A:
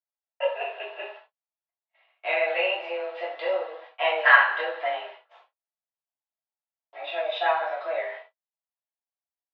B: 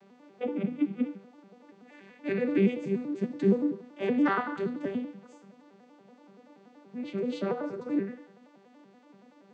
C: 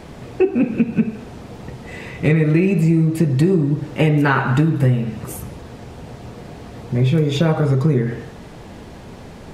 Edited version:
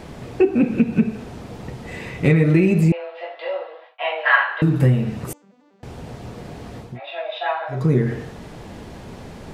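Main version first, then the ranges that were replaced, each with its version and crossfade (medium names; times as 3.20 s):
C
2.92–4.62 s: from A
5.33–5.83 s: from B
6.88–7.80 s: from A, crossfade 0.24 s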